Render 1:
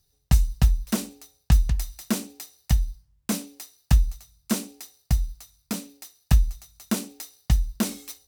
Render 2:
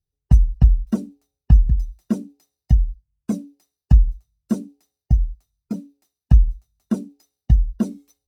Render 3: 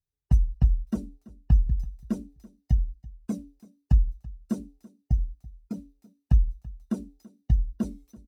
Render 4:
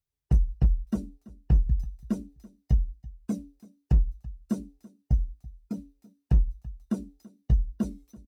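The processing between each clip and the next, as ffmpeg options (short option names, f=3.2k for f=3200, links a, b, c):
-af "afftdn=nr=17:nf=-31,tiltshelf=f=760:g=7,volume=-1dB"
-af "aecho=1:1:333|666:0.0891|0.0258,volume=-7.5dB"
-filter_complex "[0:a]asoftclip=type=hard:threshold=-15.5dB,asplit=2[a][b];[b]adelay=15,volume=-13.5dB[c];[a][c]amix=inputs=2:normalize=0"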